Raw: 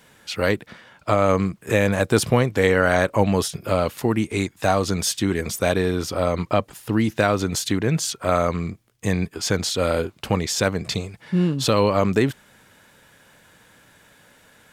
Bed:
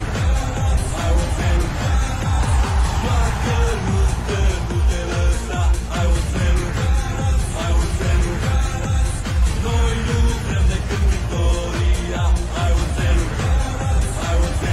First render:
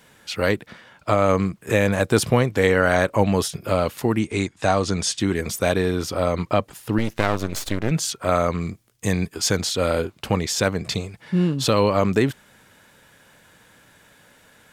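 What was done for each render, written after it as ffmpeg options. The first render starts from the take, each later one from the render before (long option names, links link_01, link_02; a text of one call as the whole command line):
ffmpeg -i in.wav -filter_complex "[0:a]asettb=1/sr,asplit=3[link_01][link_02][link_03];[link_01]atrim=end=4.194[link_04];[link_02]atrim=start=4.19:end=5.2,asetpts=PTS-STARTPTS,afade=type=in:duration=0.004:curve=qsin,afade=type=out:start_time=1.006:duration=0.004:curve=qsin,lowpass=frequency=9000:width=0.5412,lowpass=frequency=9000:width=1.3066[link_05];[link_03]atrim=start=5.196[link_06];[link_04][link_05]acrossfade=duration=0.004:curve1=hsin:curve2=qsin[link_07];[link_07][link_06]acrossfade=duration=0.004:curve1=qsin:curve2=hsin,asettb=1/sr,asplit=3[link_08][link_09][link_10];[link_08]atrim=end=6.984[link_11];[link_09]atrim=start=6.98:end=7.91,asetpts=PTS-STARTPTS,afade=type=in:duration=0.004:curve=qsin,afade=type=out:start_time=0.926:duration=0.004:curve=qsin,aeval=exprs='max(val(0),0)':channel_layout=same[link_12];[link_10]atrim=start=7.906[link_13];[link_11][link_12]acrossfade=duration=0.004:curve1=hsin:curve2=qsin[link_14];[link_14][link_13]acrossfade=duration=0.004:curve1=qsin:curve2=hsin,asettb=1/sr,asplit=3[link_15][link_16][link_17];[link_15]atrim=end=8.614[link_18];[link_16]atrim=start=8.61:end=9.61,asetpts=PTS-STARTPTS,afade=type=in:duration=0.004:curve=qsin,afade=type=out:start_time=0.996:duration=0.004:curve=qsin,bass=frequency=250:gain=0,treble=frequency=4000:gain=5[link_19];[link_17]atrim=start=9.606[link_20];[link_18][link_19]acrossfade=duration=0.004:curve1=hsin:curve2=qsin[link_21];[link_21][link_20]acrossfade=duration=0.004:curve1=qsin:curve2=hsin" out.wav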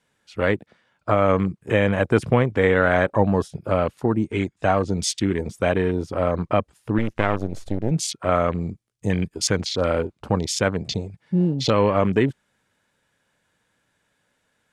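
ffmpeg -i in.wav -af "afwtdn=0.0316,lowpass=frequency=11000:width=0.5412,lowpass=frequency=11000:width=1.3066" out.wav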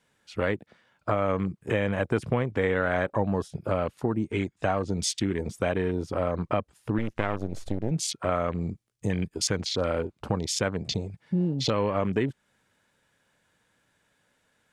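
ffmpeg -i in.wav -af "acompressor=threshold=-27dB:ratio=2" out.wav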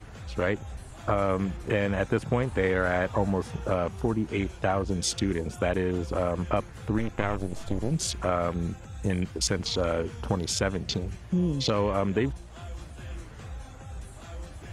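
ffmpeg -i in.wav -i bed.wav -filter_complex "[1:a]volume=-22dB[link_01];[0:a][link_01]amix=inputs=2:normalize=0" out.wav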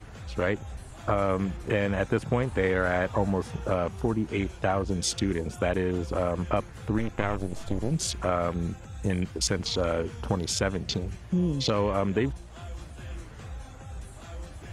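ffmpeg -i in.wav -af anull out.wav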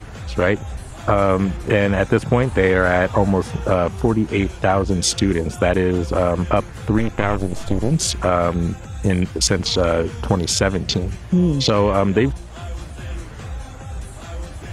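ffmpeg -i in.wav -af "volume=9.5dB,alimiter=limit=-2dB:level=0:latency=1" out.wav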